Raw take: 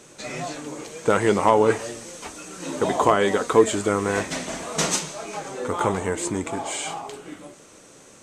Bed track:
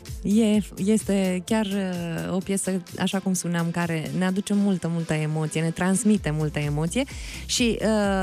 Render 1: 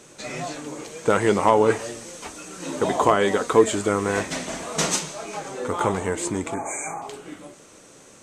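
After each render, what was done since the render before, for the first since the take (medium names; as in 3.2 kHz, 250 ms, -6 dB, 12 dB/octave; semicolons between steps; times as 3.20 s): 6.54–7.02 s: brick-wall FIR band-stop 2.5–5.9 kHz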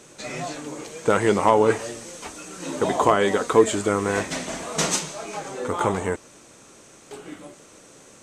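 6.16–7.11 s: room tone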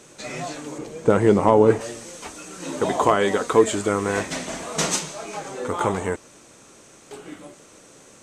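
0.78–1.81 s: tilt shelf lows +6.5 dB, about 770 Hz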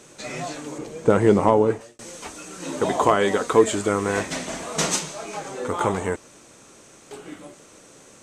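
1.44–1.99 s: fade out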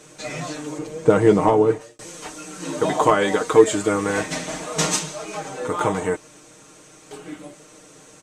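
comb 6.5 ms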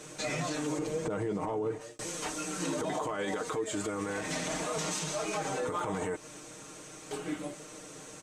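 compression 8:1, threshold -24 dBFS, peak gain reduction 17 dB; peak limiter -24.5 dBFS, peak gain reduction 11.5 dB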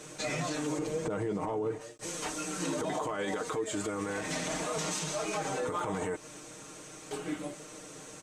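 attacks held to a fixed rise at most 410 dB/s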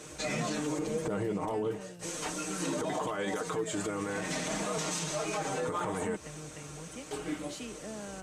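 add bed track -21.5 dB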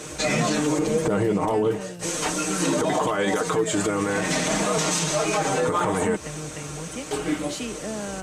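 trim +10.5 dB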